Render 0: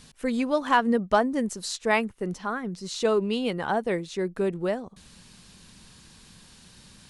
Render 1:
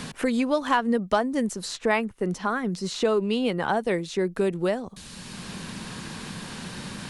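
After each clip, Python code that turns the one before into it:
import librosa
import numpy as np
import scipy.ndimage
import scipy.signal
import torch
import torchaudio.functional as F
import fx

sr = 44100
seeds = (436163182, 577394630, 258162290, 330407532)

y = fx.band_squash(x, sr, depth_pct=70)
y = F.gain(torch.from_numpy(y), 1.5).numpy()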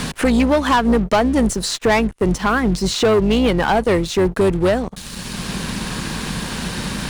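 y = fx.octave_divider(x, sr, octaves=2, level_db=-6.0)
y = fx.leveller(y, sr, passes=3)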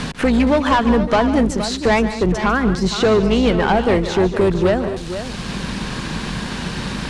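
y = fx.air_absorb(x, sr, metres=67.0)
y = fx.echo_multitap(y, sr, ms=(146, 203, 469), db=(-13.0, -15.5, -10.5))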